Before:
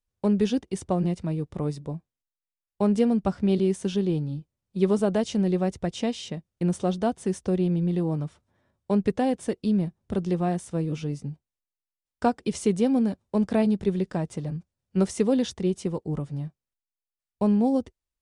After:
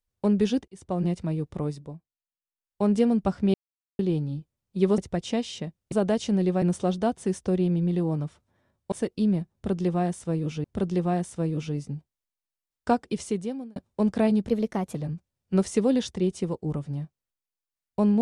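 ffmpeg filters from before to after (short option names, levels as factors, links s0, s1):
-filter_complex "[0:a]asplit=14[s0][s1][s2][s3][s4][s5][s6][s7][s8][s9][s10][s11][s12][s13];[s0]atrim=end=0.68,asetpts=PTS-STARTPTS,afade=t=out:st=0.676:d=0.004:c=hsin[s14];[s1]atrim=start=0.68:end=2.07,asetpts=PTS-STARTPTS,afade=t=in:d=0.39,afade=t=out:st=0.89:d=0.5:silence=0.211349[s15];[s2]atrim=start=2.07:end=2.41,asetpts=PTS-STARTPTS,volume=0.211[s16];[s3]atrim=start=2.41:end=3.54,asetpts=PTS-STARTPTS,afade=t=in:d=0.5:silence=0.211349,afade=t=out:st=1.126:d=0.004:c=hsin[s17];[s4]atrim=start=3.54:end=3.99,asetpts=PTS-STARTPTS,volume=0[s18];[s5]atrim=start=3.99:end=4.982,asetpts=PTS-STARTPTS,afade=t=in:d=0.004:c=hsin[s19];[s6]atrim=start=5.678:end=6.622[s20];[s7]atrim=start=4.978:end=5.682[s21];[s8]atrim=start=6.618:end=8.922[s22];[s9]atrim=start=9.378:end=11.102[s23];[s10]atrim=start=9.988:end=13.11,asetpts=PTS-STARTPTS,afade=t=out:st=2.352:d=0.77[s24];[s11]atrim=start=13.11:end=13.834,asetpts=PTS-STARTPTS,afade=t=in:d=0.004:c=hsin[s25];[s12]atrim=start=13.83:end=14.38,asetpts=PTS-STARTPTS,asetrate=51597,aresample=44100[s26];[s13]atrim=start=14.376[s27];[s14][s15][s16][s17][s18][s19]concat=n=6:v=0:a=1[s28];[s28][s20]acrossfade=d=0.004:c1=hsin:c2=hsin[s29];[s29][s21]acrossfade=d=0.004:c1=hsin:c2=hsin[s30];[s30][s22]acrossfade=d=0.004:c1=hsin:c2=hsin[s31];[s31][s23]acrossfade=d=0.004:c1=hsin:c2=hsin[s32];[s24][s25]concat=n=2:v=0:a=1[s33];[s32][s33]acrossfade=d=0.004:c1=hsin:c2=hsin[s34];[s34][s26]acrossfade=d=0.004:c1=hsin:c2=hsin[s35];[s35][s27]acrossfade=d=0.004:c1=hsin:c2=hsin"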